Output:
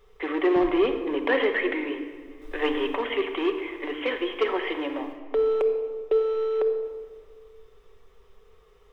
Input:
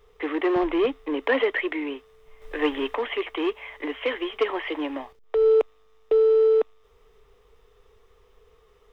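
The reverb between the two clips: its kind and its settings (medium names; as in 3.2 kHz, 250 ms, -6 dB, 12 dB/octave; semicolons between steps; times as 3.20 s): simulated room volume 2000 m³, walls mixed, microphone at 1.1 m; trim -1 dB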